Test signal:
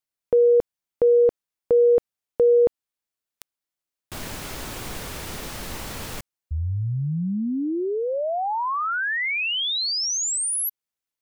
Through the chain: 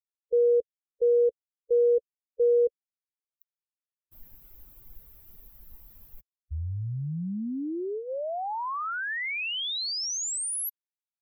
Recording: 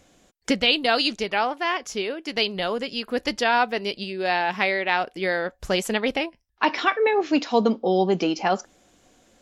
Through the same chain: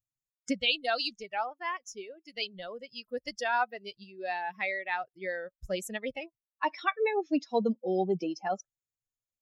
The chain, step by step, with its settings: expander on every frequency bin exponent 2; trim -5 dB

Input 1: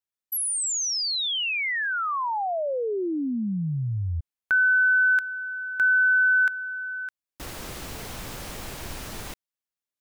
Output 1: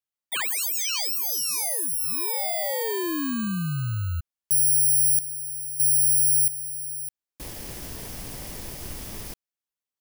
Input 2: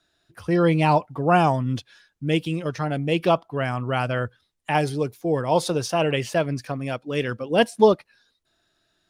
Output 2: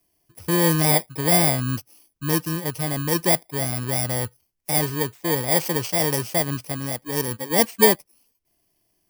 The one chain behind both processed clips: bit-reversed sample order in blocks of 32 samples

